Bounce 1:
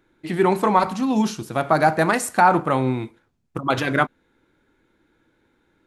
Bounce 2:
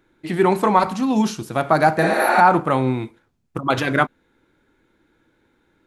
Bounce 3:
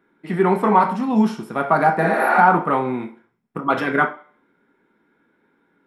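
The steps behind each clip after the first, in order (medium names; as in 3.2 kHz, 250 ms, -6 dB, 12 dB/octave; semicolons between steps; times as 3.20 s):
spectral replace 2.04–2.36 s, 230–10000 Hz both; trim +1.5 dB
in parallel at -9.5 dB: saturation -10 dBFS, distortion -15 dB; on the sum: reverberation RT60 0.40 s, pre-delay 3 ms, DRR 3 dB; trim -11.5 dB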